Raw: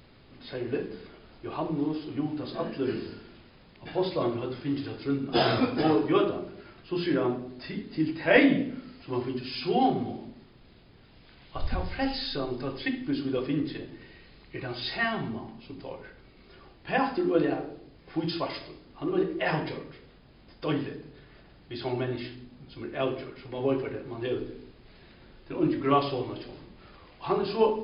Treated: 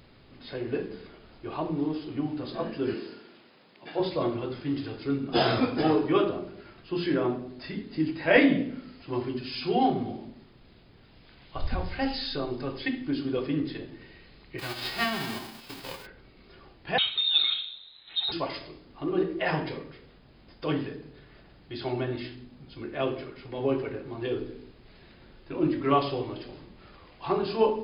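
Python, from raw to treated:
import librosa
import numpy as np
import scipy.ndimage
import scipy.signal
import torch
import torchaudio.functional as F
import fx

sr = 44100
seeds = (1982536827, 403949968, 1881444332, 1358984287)

y = fx.highpass(x, sr, hz=260.0, slope=12, at=(2.94, 4.0))
y = fx.envelope_flatten(y, sr, power=0.3, at=(14.58, 16.05), fade=0.02)
y = fx.freq_invert(y, sr, carrier_hz=4000, at=(16.98, 18.32))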